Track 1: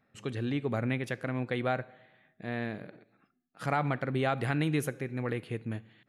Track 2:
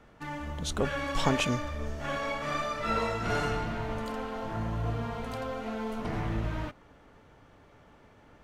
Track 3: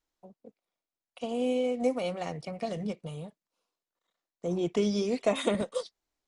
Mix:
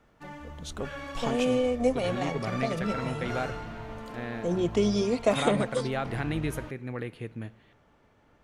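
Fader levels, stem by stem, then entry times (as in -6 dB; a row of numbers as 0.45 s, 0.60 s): -2.0 dB, -6.0 dB, +2.5 dB; 1.70 s, 0.00 s, 0.00 s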